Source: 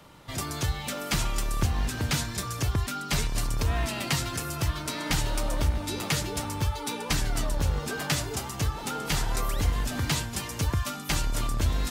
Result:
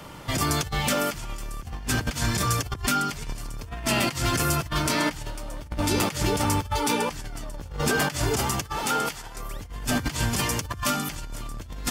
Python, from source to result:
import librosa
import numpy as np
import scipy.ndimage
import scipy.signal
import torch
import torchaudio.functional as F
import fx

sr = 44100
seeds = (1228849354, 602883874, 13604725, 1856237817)

y = fx.notch(x, sr, hz=3900.0, q=12.0)
y = fx.over_compress(y, sr, threshold_db=-32.0, ratio=-0.5)
y = fx.low_shelf(y, sr, hz=360.0, db=-8.0, at=(8.64, 9.36))
y = F.gain(torch.from_numpy(y), 5.5).numpy()